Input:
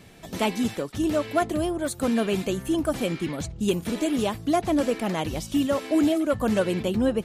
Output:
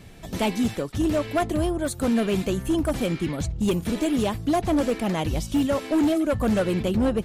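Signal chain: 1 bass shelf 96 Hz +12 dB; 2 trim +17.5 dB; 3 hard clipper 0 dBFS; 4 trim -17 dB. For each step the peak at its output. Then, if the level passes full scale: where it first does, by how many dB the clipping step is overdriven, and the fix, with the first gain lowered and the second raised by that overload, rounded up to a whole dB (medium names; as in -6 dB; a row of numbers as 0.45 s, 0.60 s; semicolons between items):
-11.0 dBFS, +6.5 dBFS, 0.0 dBFS, -17.0 dBFS; step 2, 6.5 dB; step 2 +10.5 dB, step 4 -10 dB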